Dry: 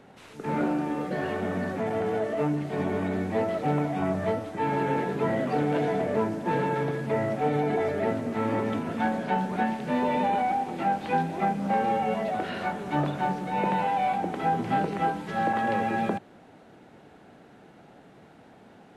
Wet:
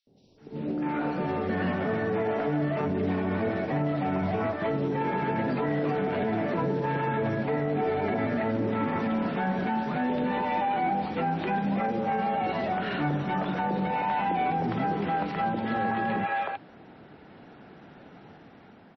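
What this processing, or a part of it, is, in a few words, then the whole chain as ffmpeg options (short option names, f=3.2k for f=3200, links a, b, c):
low-bitrate web radio: -filter_complex "[0:a]asplit=3[a][b][c];[a]afade=t=out:st=3.24:d=0.02[d];[b]highshelf=f=5.9k:g=-4,afade=t=in:st=3.24:d=0.02,afade=t=out:st=3.7:d=0.02[e];[c]afade=t=in:st=3.7:d=0.02[f];[d][e][f]amix=inputs=3:normalize=0,acrossover=split=580|4200[g][h][i];[g]adelay=70[j];[h]adelay=380[k];[j][k][i]amix=inputs=3:normalize=0,dynaudnorm=f=380:g=5:m=10.5dB,alimiter=limit=-13.5dB:level=0:latency=1:release=31,volume=-6dB" -ar 22050 -c:a libmp3lame -b:a 24k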